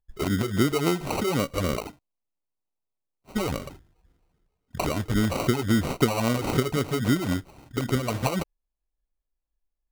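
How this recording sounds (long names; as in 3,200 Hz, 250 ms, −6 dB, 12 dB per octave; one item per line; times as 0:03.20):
phaser sweep stages 12, 3.7 Hz, lowest notch 200–1,900 Hz
aliases and images of a low sample rate 1,700 Hz, jitter 0%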